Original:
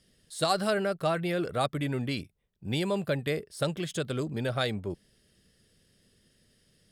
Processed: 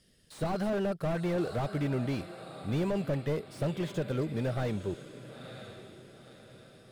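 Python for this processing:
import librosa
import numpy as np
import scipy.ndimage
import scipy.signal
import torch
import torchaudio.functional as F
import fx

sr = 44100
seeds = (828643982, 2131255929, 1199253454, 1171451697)

y = fx.echo_diffused(x, sr, ms=977, feedback_pct=44, wet_db=-16)
y = fx.slew_limit(y, sr, full_power_hz=21.0)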